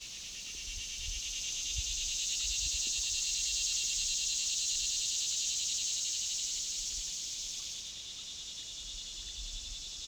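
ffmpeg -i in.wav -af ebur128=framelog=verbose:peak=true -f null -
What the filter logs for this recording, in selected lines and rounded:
Integrated loudness:
  I:         -33.2 LUFS
  Threshold: -43.1 LUFS
Loudness range:
  LRA:         6.8 LU
  Threshold: -52.2 LUFS
  LRA low:   -37.3 LUFS
  LRA high:  -30.5 LUFS
True peak:
  Peak:      -21.1 dBFS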